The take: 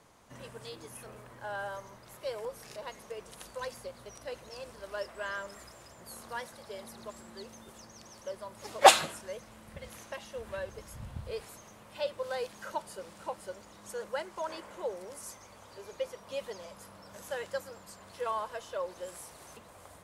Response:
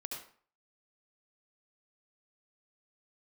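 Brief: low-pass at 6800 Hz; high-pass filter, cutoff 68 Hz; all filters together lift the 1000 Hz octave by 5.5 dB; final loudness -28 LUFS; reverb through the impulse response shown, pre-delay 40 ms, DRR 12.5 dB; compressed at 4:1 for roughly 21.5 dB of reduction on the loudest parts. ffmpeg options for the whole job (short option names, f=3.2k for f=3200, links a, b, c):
-filter_complex "[0:a]highpass=68,lowpass=6.8k,equalizer=f=1k:t=o:g=7.5,acompressor=threshold=-34dB:ratio=4,asplit=2[a][b];[1:a]atrim=start_sample=2205,adelay=40[c];[b][c]afir=irnorm=-1:irlink=0,volume=-11.5dB[d];[a][d]amix=inputs=2:normalize=0,volume=13.5dB"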